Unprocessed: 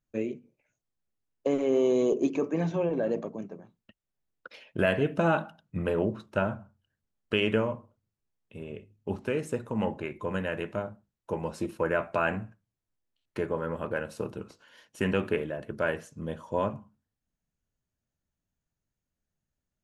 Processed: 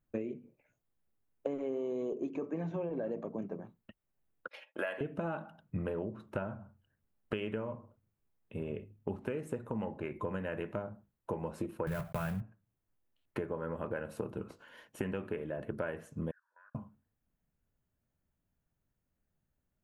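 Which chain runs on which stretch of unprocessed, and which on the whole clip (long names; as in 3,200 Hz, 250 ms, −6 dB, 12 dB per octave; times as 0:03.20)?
0:04.48–0:05.01: noise gate −53 dBFS, range −12 dB + high-pass filter 660 Hz + comb filter 3.6 ms, depth 38%
0:11.87–0:12.42: one scale factor per block 3 bits + low shelf with overshoot 210 Hz +9.5 dB, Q 3 + upward compression, threshold −35 dBFS
0:16.31–0:16.75: flat-topped band-pass 1,600 Hz, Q 5.5 + output level in coarse steps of 21 dB
whole clip: parametric band 5,400 Hz −12.5 dB 1.7 octaves; downward compressor 12 to 1, threshold −37 dBFS; level +4 dB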